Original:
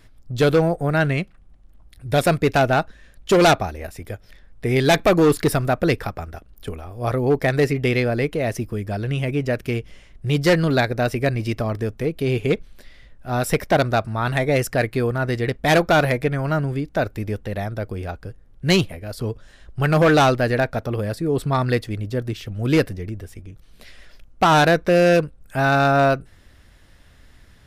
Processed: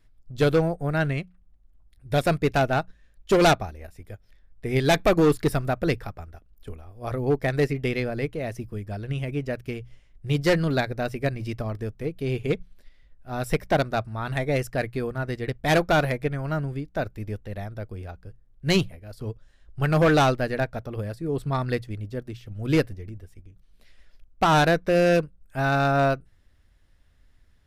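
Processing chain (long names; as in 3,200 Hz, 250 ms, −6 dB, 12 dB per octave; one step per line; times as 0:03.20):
low-shelf EQ 89 Hz +9 dB
mains-hum notches 60/120/180 Hz
expander for the loud parts 1.5 to 1, over −35 dBFS
level −3.5 dB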